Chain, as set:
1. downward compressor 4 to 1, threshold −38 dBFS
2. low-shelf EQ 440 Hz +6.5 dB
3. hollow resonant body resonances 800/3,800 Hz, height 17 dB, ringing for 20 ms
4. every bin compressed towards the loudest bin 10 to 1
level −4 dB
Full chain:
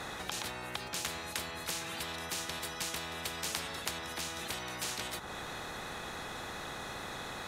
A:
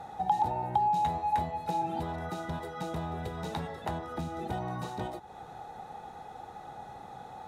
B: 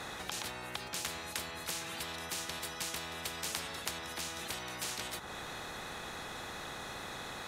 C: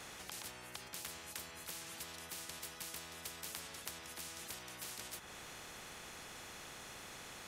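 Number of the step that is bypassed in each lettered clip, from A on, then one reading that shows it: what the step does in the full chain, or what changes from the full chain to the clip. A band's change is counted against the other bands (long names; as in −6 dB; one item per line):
4, 8 kHz band −23.0 dB
2, change in integrated loudness −1.0 LU
3, 8 kHz band +4.5 dB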